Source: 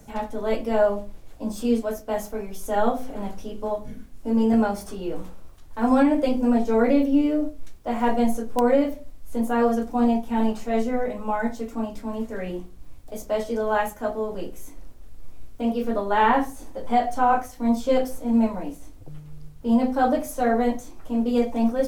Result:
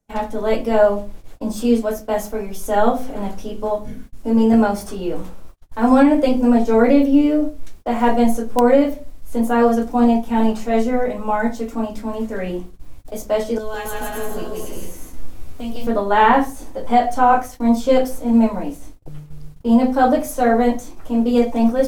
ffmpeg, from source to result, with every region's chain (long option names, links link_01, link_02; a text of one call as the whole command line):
ffmpeg -i in.wav -filter_complex "[0:a]asettb=1/sr,asplit=3[link_01][link_02][link_03];[link_01]atrim=end=13.584[link_04];[link_02]atrim=start=13.58:end=15.87,asetpts=PTS-STARTPTS,afade=type=in:duration=0.004:curve=qsin,afade=type=out:start_time=2.286:duration=0.004:curve=qsin,acrossover=split=130|3000[link_05][link_06][link_07];[link_06]acompressor=threshold=-36dB:ratio=6:attack=3.2:release=140:knee=2.83:detection=peak[link_08];[link_05][link_08][link_07]amix=inputs=3:normalize=0,asplit=2[link_09][link_10];[link_10]adelay=12,volume=-4dB[link_11];[link_09][link_11]amix=inputs=2:normalize=0,atrim=end_sample=100989,aecho=1:1:160|272|350.4|405.3|443.7:0.794|0.631|0.501|0.398|0.316,atrim=end_sample=100989[link_12];[link_03]atrim=start=15.866[link_13];[link_04][link_12]acrossfade=duration=0.004:curve1=hsin:curve2=qsin[link_14];[link_14][link_13]acrossfade=duration=0.004:curve1=qsin:curve2=hsin,bandreject=frequency=71.91:width_type=h:width=4,bandreject=frequency=143.82:width_type=h:width=4,bandreject=frequency=215.73:width_type=h:width=4,agate=range=-33dB:threshold=-39dB:ratio=16:detection=peak,volume=6dB" out.wav